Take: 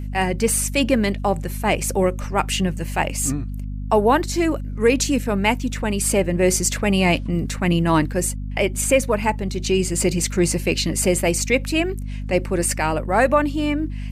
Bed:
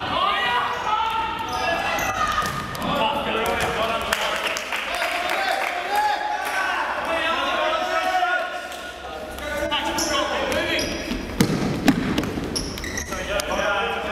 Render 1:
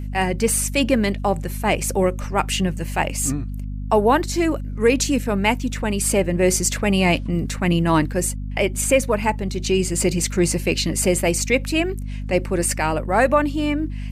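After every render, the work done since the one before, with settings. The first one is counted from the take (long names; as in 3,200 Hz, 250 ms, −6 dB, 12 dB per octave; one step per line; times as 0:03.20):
no processing that can be heard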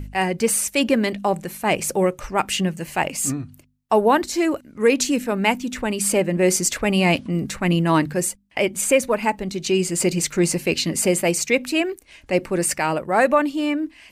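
hum removal 50 Hz, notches 5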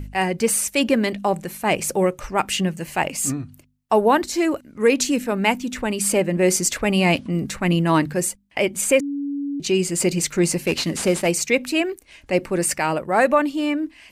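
0:09.00–0:09.60: beep over 283 Hz −23 dBFS
0:10.67–0:11.27: variable-slope delta modulation 64 kbit/s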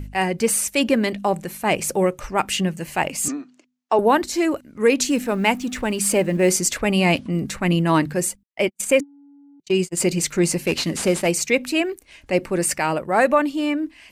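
0:03.28–0:03.99: elliptic band-pass filter 270–6,800 Hz
0:05.10–0:06.53: mu-law and A-law mismatch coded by mu
0:08.43–0:09.97: noise gate −24 dBFS, range −50 dB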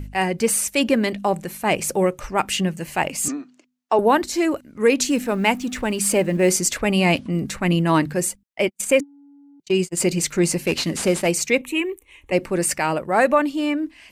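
0:11.61–0:12.32: phaser with its sweep stopped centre 1,000 Hz, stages 8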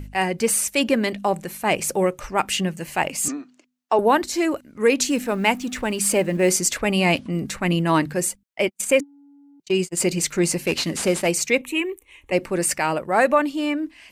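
low-shelf EQ 330 Hz −3 dB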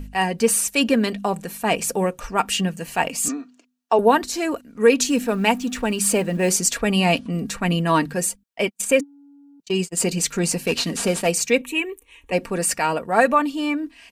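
notch filter 2,100 Hz, Q 12
comb filter 4.3 ms, depth 47%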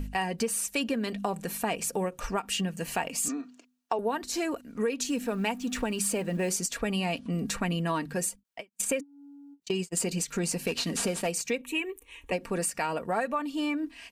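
downward compressor 6 to 1, threshold −27 dBFS, peak gain reduction 16.5 dB
every ending faded ahead of time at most 430 dB per second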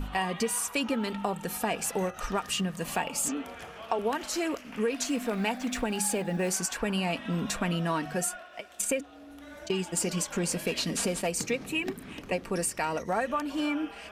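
mix in bed −21 dB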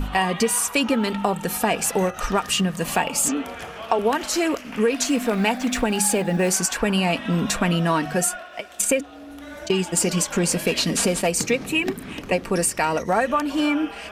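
level +8.5 dB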